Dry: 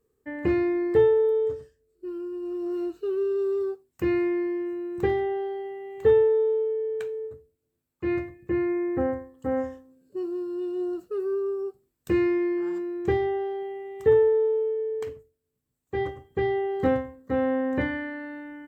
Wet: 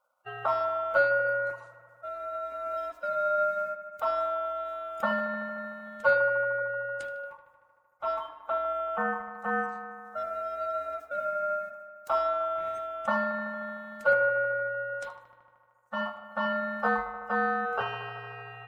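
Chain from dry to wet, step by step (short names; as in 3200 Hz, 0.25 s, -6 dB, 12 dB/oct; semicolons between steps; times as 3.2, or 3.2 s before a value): bin magnitudes rounded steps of 30 dB; dynamic EQ 1800 Hz, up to -6 dB, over -44 dBFS, Q 1.1; darkening echo 76 ms, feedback 82%, low-pass 3100 Hz, level -12.5 dB; ring modulator 1000 Hz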